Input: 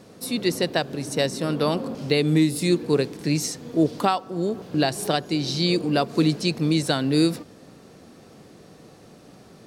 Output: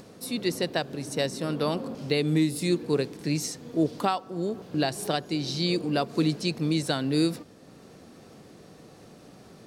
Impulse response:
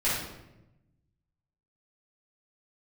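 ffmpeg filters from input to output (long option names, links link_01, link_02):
-af "acompressor=mode=upward:threshold=-39dB:ratio=2.5,volume=-4.5dB"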